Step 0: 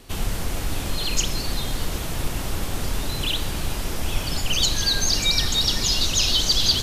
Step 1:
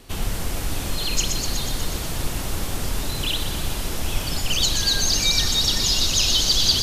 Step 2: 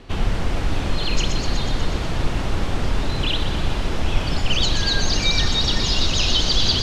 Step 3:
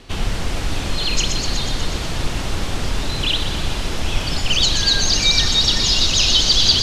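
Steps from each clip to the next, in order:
thin delay 0.122 s, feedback 74%, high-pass 4600 Hz, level -4 dB
Bessel low-pass 2800 Hz, order 2; gain +5 dB
high shelf 3300 Hz +11.5 dB; gain -1 dB

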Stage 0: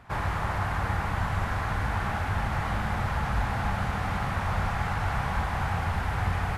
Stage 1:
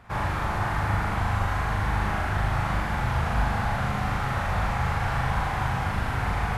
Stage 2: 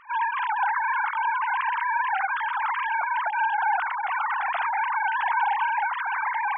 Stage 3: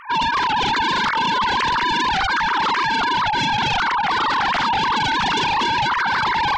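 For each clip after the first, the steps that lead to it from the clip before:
flutter echo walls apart 6.7 m, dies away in 0.63 s
sine-wave speech
sine folder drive 11 dB, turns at -13.5 dBFS; gain -3 dB

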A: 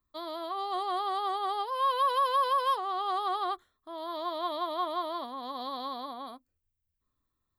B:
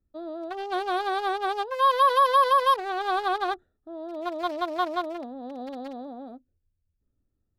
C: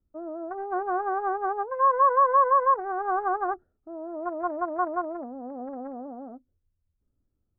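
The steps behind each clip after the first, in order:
Wiener smoothing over 41 samples; gain +8.5 dB
steep low-pass 1500 Hz 36 dB/oct

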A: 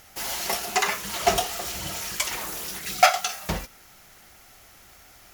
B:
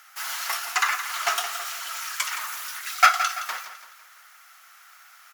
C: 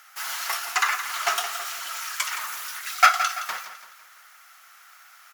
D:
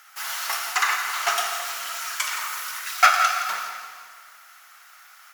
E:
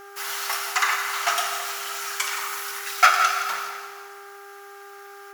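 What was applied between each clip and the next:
resonant high-pass 1300 Hz, resonance Q 3.2; on a send: feedback echo 0.168 s, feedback 43%, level -11 dB; on the sum: gain -2.5 dB
low shelf 270 Hz +7.5 dB
plate-style reverb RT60 1.8 s, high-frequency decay 0.9×, DRR 3.5 dB
buzz 400 Hz, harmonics 4, -44 dBFS -2 dB/oct

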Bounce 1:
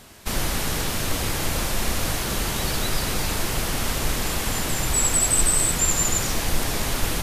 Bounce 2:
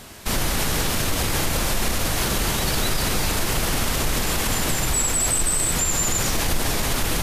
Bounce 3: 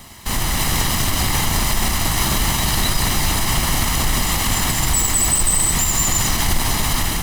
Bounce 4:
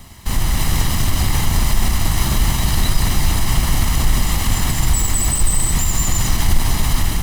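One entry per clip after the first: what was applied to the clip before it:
limiter -18 dBFS, peak gain reduction 10 dB; gain +5.5 dB
minimum comb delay 1 ms; AGC gain up to 3 dB; gain +2.5 dB
low shelf 170 Hz +10 dB; gain -3.5 dB

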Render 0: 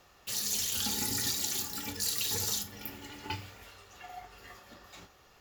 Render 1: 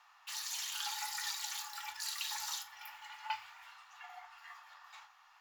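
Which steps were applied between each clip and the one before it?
elliptic high-pass 880 Hz, stop band 50 dB; tilt -4 dB/oct; gain +3 dB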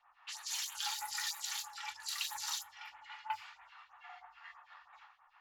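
phaser stages 2, 3.1 Hz, lowest notch 130–5000 Hz; low-pass opened by the level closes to 2100 Hz, open at -37 dBFS; gain +1 dB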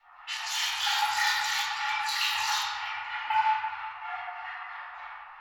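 reverb RT60 2.0 s, pre-delay 3 ms, DRR -11.5 dB

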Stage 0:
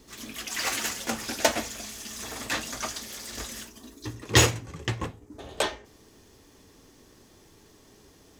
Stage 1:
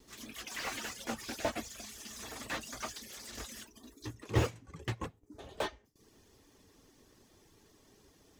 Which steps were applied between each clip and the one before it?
reverb removal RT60 0.52 s; gate with hold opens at -48 dBFS; slew limiter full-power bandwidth 93 Hz; gain -6.5 dB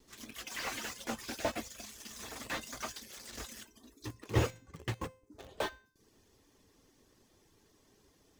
in parallel at -6 dB: bit-crush 7-bit; on the sum: resonator 520 Hz, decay 0.46 s, mix 60%; gain +4 dB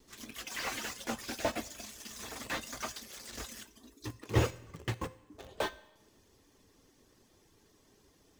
Schroeder reverb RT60 1.2 s, combs from 30 ms, DRR 19.5 dB; gain +1.5 dB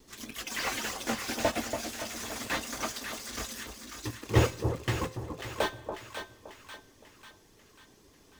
split-band echo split 1100 Hz, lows 0.284 s, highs 0.543 s, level -7 dB; gain +4.5 dB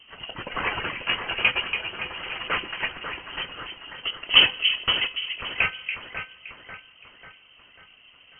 inverted band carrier 3100 Hz; gain +7 dB; MP3 32 kbps 32000 Hz

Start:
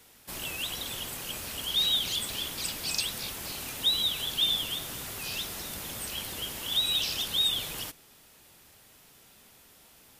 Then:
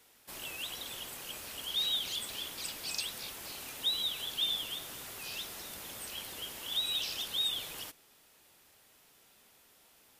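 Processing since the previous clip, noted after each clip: tone controls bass -7 dB, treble -1 dB; gain -5.5 dB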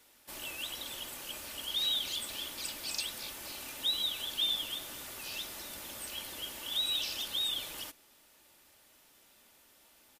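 comb 3.4 ms, depth 33%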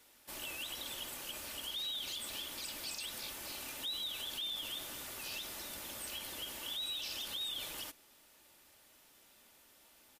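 limiter -31.5 dBFS, peak gain reduction 9.5 dB; gain -1 dB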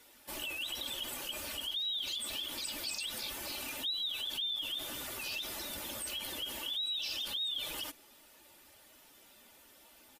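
spectral contrast raised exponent 1.5; gain +4 dB

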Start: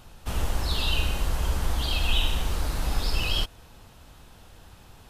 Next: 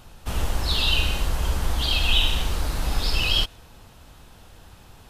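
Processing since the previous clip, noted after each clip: dynamic EQ 3500 Hz, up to +5 dB, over -40 dBFS, Q 0.92; gain +2 dB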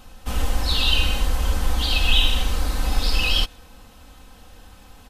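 comb 3.9 ms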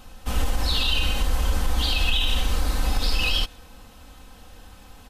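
limiter -12.5 dBFS, peak gain reduction 8 dB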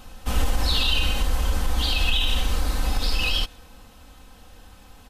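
vocal rider within 3 dB 2 s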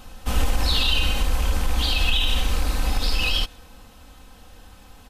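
rattling part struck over -23 dBFS, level -26 dBFS; gain +1 dB

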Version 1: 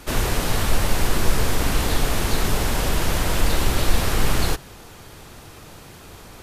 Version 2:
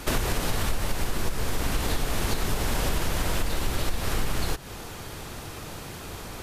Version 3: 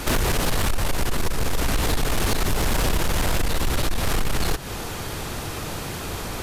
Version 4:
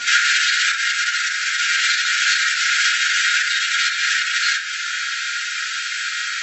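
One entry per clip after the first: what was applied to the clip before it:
compressor 10:1, threshold -25 dBFS, peak gain reduction 17 dB; gain +4 dB
soft clip -23.5 dBFS, distortion -13 dB; gain +8 dB
brick-wall FIR band-pass 1300–7800 Hz; reverb RT60 0.55 s, pre-delay 4 ms, DRR -9 dB; gain +6 dB

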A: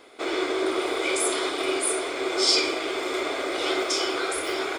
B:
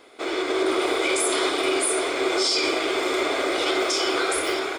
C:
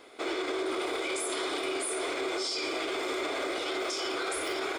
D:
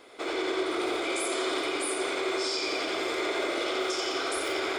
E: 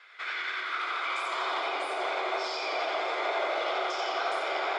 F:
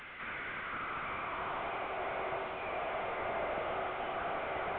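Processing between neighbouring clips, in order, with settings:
limiter -17.5 dBFS, peak gain reduction 9.5 dB; AGC gain up to 4.5 dB
limiter -22 dBFS, peak gain reduction 9 dB; gain -2 dB
analogue delay 88 ms, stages 4096, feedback 69%, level -3.5 dB
vibrato 4.3 Hz 32 cents; high-pass sweep 1600 Hz -> 730 Hz, 0.56–1.79; air absorption 150 m
delta modulation 16 kbps, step -36 dBFS; gain -5.5 dB

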